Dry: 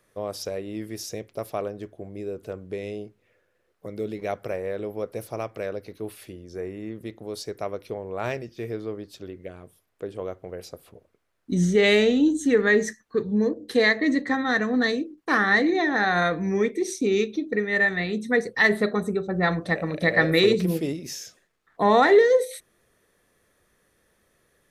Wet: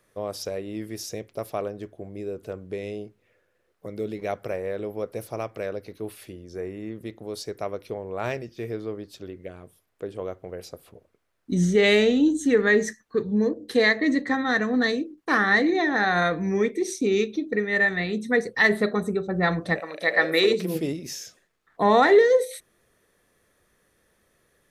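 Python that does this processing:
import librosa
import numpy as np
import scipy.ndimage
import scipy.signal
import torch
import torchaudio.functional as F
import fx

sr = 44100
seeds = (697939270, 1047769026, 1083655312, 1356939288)

y = fx.highpass(x, sr, hz=fx.line((19.79, 670.0), (20.74, 230.0)), slope=12, at=(19.79, 20.74), fade=0.02)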